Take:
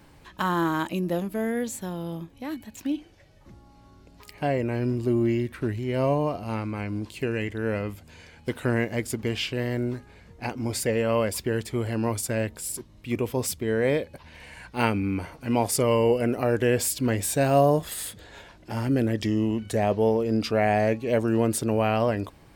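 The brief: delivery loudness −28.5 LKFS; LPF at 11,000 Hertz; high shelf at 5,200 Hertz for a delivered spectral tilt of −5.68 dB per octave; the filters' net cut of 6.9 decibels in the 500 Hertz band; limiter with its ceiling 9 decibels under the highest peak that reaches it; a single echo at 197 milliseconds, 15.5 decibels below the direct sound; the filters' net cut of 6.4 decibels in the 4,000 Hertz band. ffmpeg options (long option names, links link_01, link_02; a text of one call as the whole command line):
ffmpeg -i in.wav -af "lowpass=11000,equalizer=frequency=500:width_type=o:gain=-8.5,equalizer=frequency=4000:width_type=o:gain=-6,highshelf=frequency=5200:gain=-7,alimiter=limit=-19.5dB:level=0:latency=1,aecho=1:1:197:0.168,volume=2.5dB" out.wav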